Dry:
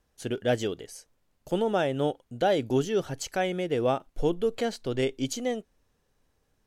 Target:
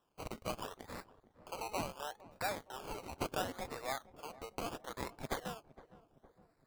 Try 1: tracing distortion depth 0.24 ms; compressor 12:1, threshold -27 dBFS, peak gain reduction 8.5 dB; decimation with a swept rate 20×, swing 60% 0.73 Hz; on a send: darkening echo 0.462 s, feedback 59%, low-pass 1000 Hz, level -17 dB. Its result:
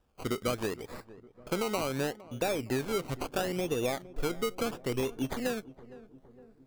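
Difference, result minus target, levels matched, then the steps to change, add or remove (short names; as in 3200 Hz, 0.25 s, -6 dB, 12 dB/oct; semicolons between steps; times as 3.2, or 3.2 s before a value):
1000 Hz band -6.0 dB
add after compressor: HPF 780 Hz 24 dB/oct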